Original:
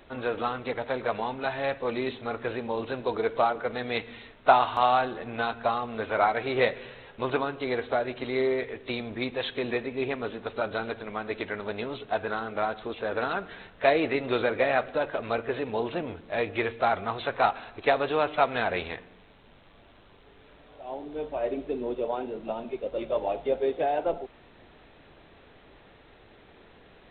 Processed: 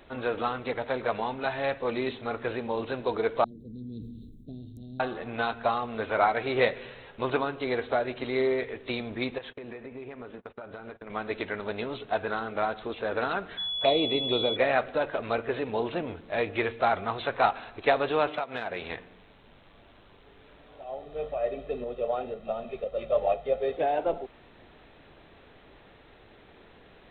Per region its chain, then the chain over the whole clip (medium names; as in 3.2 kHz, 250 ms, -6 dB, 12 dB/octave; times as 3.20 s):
3.44–5.00 s: inverse Chebyshev band-stop 930–2100 Hz, stop band 80 dB + decay stretcher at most 28 dB/s
9.38–11.10 s: gate -40 dBFS, range -29 dB + low-pass 2.4 kHz + compression 10:1, threshold -37 dBFS
13.57–14.55 s: touch-sensitive phaser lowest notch 240 Hz, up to 1.7 kHz, full sweep at -25.5 dBFS + whistle 3.4 kHz -29 dBFS
18.27–18.90 s: high-pass 100 Hz + transient shaper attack +10 dB, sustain -1 dB + compression 4:1, threshold -30 dBFS
20.84–23.77 s: comb 1.6 ms, depth 78% + tremolo saw up 2 Hz, depth 45%
whole clip: none